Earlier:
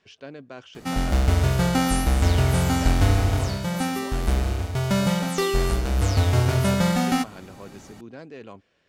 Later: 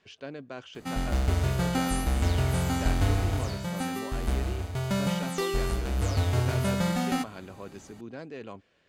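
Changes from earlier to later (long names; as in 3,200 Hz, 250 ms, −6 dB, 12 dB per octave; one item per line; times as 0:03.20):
background −6.0 dB
master: add notch filter 5,500 Hz, Q 15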